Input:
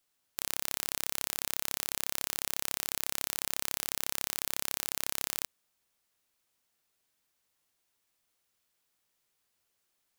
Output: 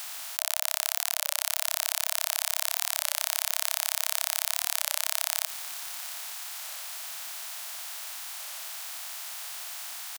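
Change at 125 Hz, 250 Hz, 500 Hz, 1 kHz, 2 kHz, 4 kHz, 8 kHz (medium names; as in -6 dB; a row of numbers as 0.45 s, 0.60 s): under -40 dB, under -40 dB, 0.0 dB, +6.5 dB, +6.5 dB, +7.0 dB, +6.5 dB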